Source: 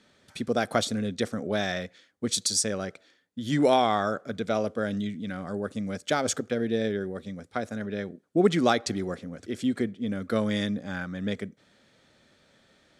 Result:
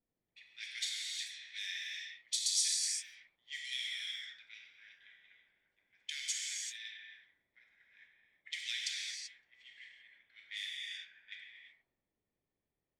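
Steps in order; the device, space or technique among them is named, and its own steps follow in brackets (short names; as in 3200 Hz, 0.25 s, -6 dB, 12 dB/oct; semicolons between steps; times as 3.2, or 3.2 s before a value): steep high-pass 1900 Hz 72 dB/oct; high shelf 11000 Hz -6 dB; non-linear reverb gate 0.41 s flat, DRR -3 dB; cassette deck with a dynamic noise filter (white noise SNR 31 dB; low-pass opened by the level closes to 360 Hz, open at -32 dBFS); gain -7 dB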